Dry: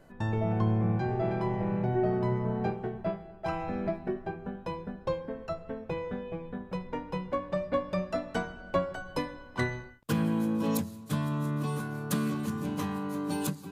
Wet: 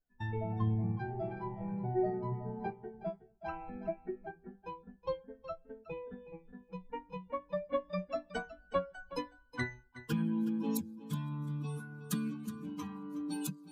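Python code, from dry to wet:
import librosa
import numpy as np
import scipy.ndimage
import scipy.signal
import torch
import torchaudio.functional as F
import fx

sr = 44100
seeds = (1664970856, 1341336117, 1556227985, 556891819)

y = fx.bin_expand(x, sr, power=2.0)
y = y + 10.0 ** (-15.0 / 20.0) * np.pad(y, (int(369 * sr / 1000.0), 0))[:len(y)]
y = y * librosa.db_to_amplitude(-2.0)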